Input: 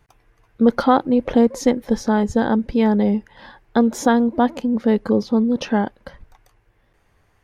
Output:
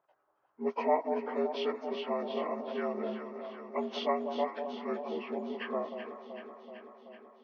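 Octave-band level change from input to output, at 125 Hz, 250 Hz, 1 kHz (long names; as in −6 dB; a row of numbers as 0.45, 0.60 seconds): below −25 dB, −22.5 dB, −12.5 dB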